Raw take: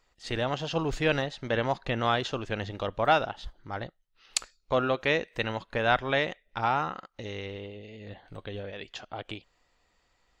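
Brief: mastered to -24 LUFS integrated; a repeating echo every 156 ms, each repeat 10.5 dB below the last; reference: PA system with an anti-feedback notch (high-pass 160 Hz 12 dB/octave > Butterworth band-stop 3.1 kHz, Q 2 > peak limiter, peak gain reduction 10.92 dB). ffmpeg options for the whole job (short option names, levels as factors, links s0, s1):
-af "highpass=160,asuperstop=centerf=3100:order=8:qfactor=2,aecho=1:1:156|312|468:0.299|0.0896|0.0269,volume=3.35,alimiter=limit=0.316:level=0:latency=1"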